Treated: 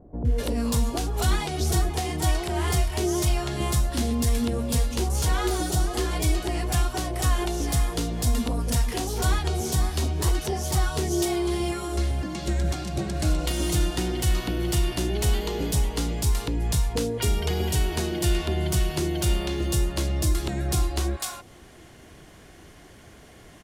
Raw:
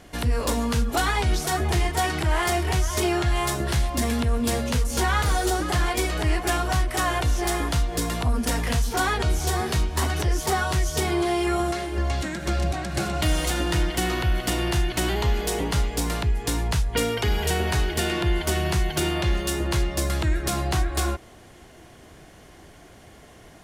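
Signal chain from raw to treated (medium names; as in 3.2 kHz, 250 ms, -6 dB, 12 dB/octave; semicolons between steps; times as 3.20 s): dynamic bell 1.7 kHz, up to -8 dB, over -42 dBFS, Q 0.89; bands offset in time lows, highs 250 ms, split 730 Hz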